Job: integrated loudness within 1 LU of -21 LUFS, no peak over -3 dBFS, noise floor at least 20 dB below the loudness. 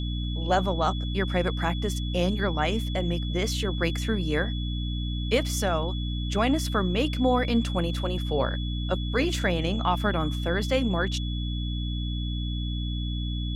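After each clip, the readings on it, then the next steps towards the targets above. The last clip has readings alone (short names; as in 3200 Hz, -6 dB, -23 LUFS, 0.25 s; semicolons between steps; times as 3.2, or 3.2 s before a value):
hum 60 Hz; harmonics up to 300 Hz; hum level -27 dBFS; steady tone 3400 Hz; tone level -38 dBFS; loudness -27.5 LUFS; peak -10.0 dBFS; loudness target -21.0 LUFS
-> notches 60/120/180/240/300 Hz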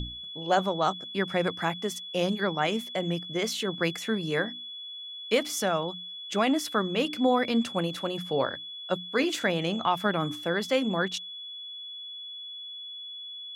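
hum none; steady tone 3400 Hz; tone level -38 dBFS
-> notch 3400 Hz, Q 30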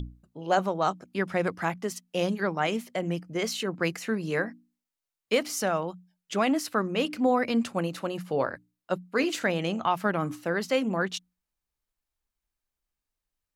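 steady tone none; loudness -28.5 LUFS; peak -11.5 dBFS; loudness target -21.0 LUFS
-> gain +7.5 dB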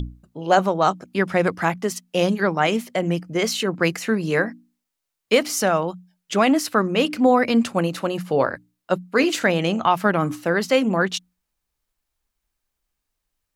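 loudness -21.0 LUFS; peak -4.0 dBFS; noise floor -81 dBFS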